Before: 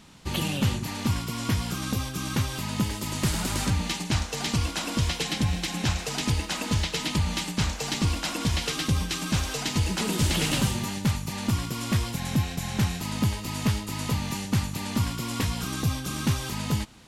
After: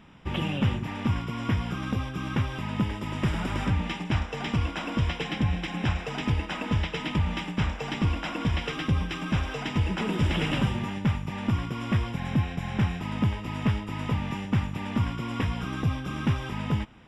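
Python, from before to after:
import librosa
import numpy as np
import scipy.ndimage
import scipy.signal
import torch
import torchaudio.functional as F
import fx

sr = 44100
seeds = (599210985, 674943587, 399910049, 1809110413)

y = scipy.signal.savgol_filter(x, 25, 4, mode='constant')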